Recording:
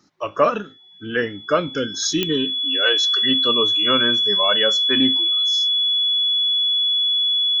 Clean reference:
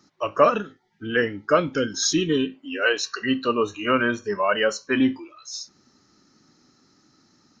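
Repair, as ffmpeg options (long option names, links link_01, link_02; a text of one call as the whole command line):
ffmpeg -i in.wav -af "adeclick=threshold=4,bandreject=frequency=3400:width=30" out.wav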